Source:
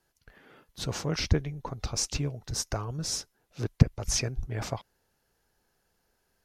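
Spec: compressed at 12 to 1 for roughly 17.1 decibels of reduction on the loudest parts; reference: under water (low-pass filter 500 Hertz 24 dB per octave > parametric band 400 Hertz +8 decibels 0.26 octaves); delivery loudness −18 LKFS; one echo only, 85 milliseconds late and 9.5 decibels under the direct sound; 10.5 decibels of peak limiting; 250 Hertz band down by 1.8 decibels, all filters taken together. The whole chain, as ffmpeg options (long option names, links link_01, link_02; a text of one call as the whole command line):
ffmpeg -i in.wav -af "equalizer=frequency=250:width_type=o:gain=-4,acompressor=threshold=-30dB:ratio=12,alimiter=level_in=5dB:limit=-24dB:level=0:latency=1,volume=-5dB,lowpass=frequency=500:width=0.5412,lowpass=frequency=500:width=1.3066,equalizer=frequency=400:width_type=o:width=0.26:gain=8,aecho=1:1:85:0.335,volume=23.5dB" out.wav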